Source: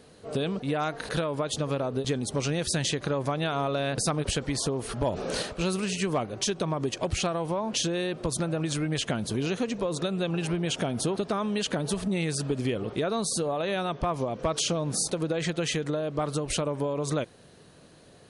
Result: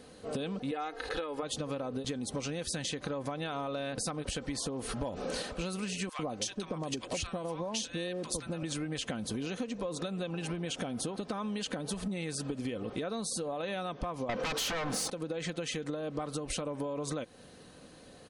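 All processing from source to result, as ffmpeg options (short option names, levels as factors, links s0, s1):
-filter_complex "[0:a]asettb=1/sr,asplit=3[s0][s1][s2];[s0]atrim=end=0.714[s3];[s1]atrim=start=0.71:end=1.43,asetpts=PTS-STARTPTS,afade=t=in:d=0.004:c=qsin,afade=t=out:st=0.716:d=0.004:c=qsin,acrossover=split=5000[s4][s5];[s5]acompressor=threshold=0.00158:ratio=4:attack=1:release=60[s6];[s4][s6]amix=inputs=2:normalize=0,equalizer=f=150:t=o:w=0.77:g=-14.5,aecho=1:1:2.4:0.51,atrim=end_sample=31752[s7];[s2]atrim=start=1.426[s8];[s3][s7]acrossfade=d=0.004:c1=hsin:c2=qsin[s9];[s9][s8]acrossfade=d=0.004:c1=qsin:c2=hsin,asettb=1/sr,asplit=3[s10][s11][s12];[s10]atrim=end=6.094[s13];[s11]atrim=start=6.09:end=8.63,asetpts=PTS-STARTPTS,afade=t=in:d=0.004:c=qsin,afade=t=out:st=2.536:d=0.004:c=qsin,equalizer=f=6700:w=0.39:g=3.5,acrossover=split=1100[s14][s15];[s14]adelay=100[s16];[s16][s15]amix=inputs=2:normalize=0,atrim=end_sample=112014[s17];[s12]atrim=start=8.626[s18];[s13][s17]acrossfade=d=0.004:c1=hsin:c2=qsin[s19];[s19][s18]acrossfade=d=0.004:c1=qsin:c2=hsin,asettb=1/sr,asplit=3[s20][s21][s22];[s20]atrim=end=14.294[s23];[s21]atrim=start=14.29:end=15.1,asetpts=PTS-STARTPTS,afade=t=in:d=0.004:c=qsin,afade=t=out:st=0.806:d=0.004:c=qsin,asplit=2[s24][s25];[s25]highpass=f=720:p=1,volume=4.47,asoftclip=type=tanh:threshold=0.158[s26];[s24][s26]amix=inputs=2:normalize=0,lowpass=f=2000:p=1,volume=0.501,aeval=exprs='0.141*sin(PI/2*3.55*val(0)/0.141)':c=same[s27];[s22]atrim=start=15.096[s28];[s23][s27]acrossfade=d=0.004:c1=hsin:c2=qsin[s29];[s29][s28]acrossfade=d=0.004:c1=qsin:c2=hsin,aecho=1:1:3.9:0.38,acompressor=threshold=0.0224:ratio=6"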